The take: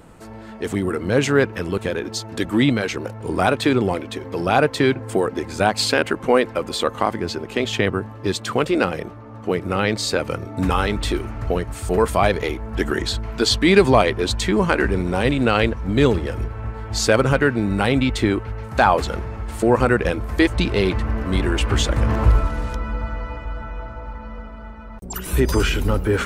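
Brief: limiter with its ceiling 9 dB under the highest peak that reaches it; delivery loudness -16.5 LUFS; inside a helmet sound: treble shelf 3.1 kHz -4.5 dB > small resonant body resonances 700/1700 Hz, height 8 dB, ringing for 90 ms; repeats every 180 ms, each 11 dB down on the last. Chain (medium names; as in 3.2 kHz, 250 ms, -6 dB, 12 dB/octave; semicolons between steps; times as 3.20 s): peak limiter -11.5 dBFS; treble shelf 3.1 kHz -4.5 dB; feedback delay 180 ms, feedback 28%, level -11 dB; small resonant body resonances 700/1700 Hz, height 8 dB, ringing for 90 ms; trim +7.5 dB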